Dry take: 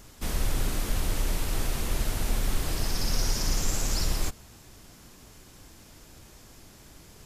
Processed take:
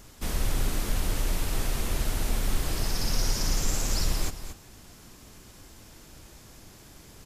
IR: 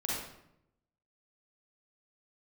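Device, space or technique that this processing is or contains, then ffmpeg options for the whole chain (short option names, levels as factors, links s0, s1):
ducked delay: -filter_complex "[0:a]asplit=3[s0][s1][s2];[s1]adelay=226,volume=0.531[s3];[s2]apad=whole_len=330084[s4];[s3][s4]sidechaincompress=threshold=0.0398:ratio=8:attack=16:release=917[s5];[s0][s5]amix=inputs=2:normalize=0"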